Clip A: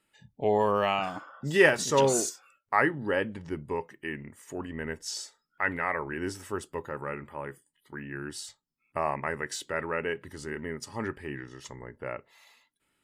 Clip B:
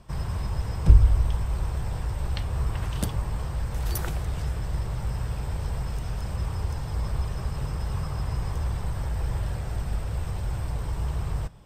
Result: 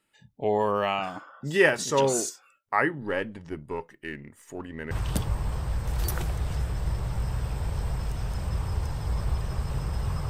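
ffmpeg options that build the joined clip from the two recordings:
-filter_complex "[0:a]asettb=1/sr,asplit=3[a][b][c];[a]atrim=end=3.004[d];[b]atrim=start=3:end=4.91,asetpts=PTS-STARTPTS,afade=t=in:d=0.004:c=qsin,afade=t=out:st=1.906:d=0.004:c=qsin,aeval=exprs='if(lt(val(0),0),0.708*val(0),val(0))':c=same[e];[c]atrim=start=4.906[f];[d][e]acrossfade=d=0.004:c1=hsin:c2=qsin[g];[g][f]acrossfade=d=0.004:c1=qsin:c2=hsin,apad=whole_dur=10.29,atrim=end=10.29,atrim=end=4.912[h];[1:a]atrim=start=2.778:end=8.16[i];[h][i]acrossfade=d=0.004:c1=hsin:c2=hsin"

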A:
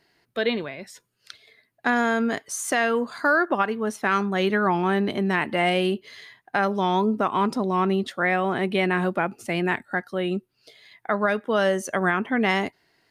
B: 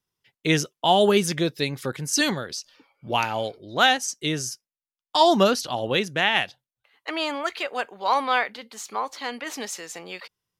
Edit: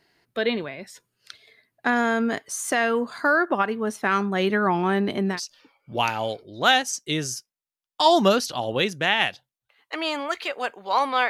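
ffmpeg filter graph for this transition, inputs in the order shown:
-filter_complex "[0:a]apad=whole_dur=11.29,atrim=end=11.29,atrim=end=5.4,asetpts=PTS-STARTPTS[a];[1:a]atrim=start=2.43:end=8.44,asetpts=PTS-STARTPTS[b];[a][b]acrossfade=d=0.12:c1=tri:c2=tri"

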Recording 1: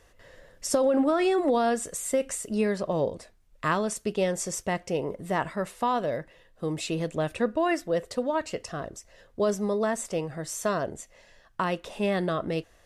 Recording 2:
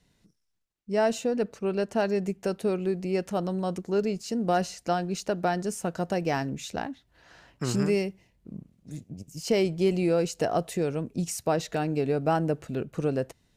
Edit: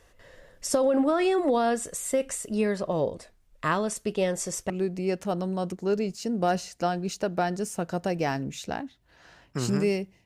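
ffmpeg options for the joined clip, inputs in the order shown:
-filter_complex "[0:a]apad=whole_dur=10.25,atrim=end=10.25,atrim=end=4.702[a];[1:a]atrim=start=2.758:end=8.31[b];[a][b]acrossfade=d=0.004:c1=hsin:c2=hsin"

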